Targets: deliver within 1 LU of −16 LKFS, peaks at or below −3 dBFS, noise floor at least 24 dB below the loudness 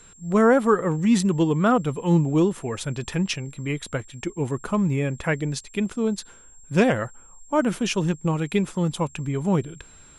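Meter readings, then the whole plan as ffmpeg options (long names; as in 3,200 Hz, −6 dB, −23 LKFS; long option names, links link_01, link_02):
interfering tone 7,500 Hz; level of the tone −49 dBFS; integrated loudness −23.5 LKFS; sample peak −7.0 dBFS; target loudness −16.0 LKFS
→ -af "bandreject=frequency=7500:width=30"
-af "volume=7.5dB,alimiter=limit=-3dB:level=0:latency=1"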